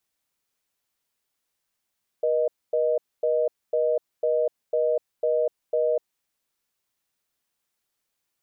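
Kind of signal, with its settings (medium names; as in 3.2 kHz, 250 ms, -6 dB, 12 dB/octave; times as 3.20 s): call progress tone reorder tone, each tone -22.5 dBFS 3.90 s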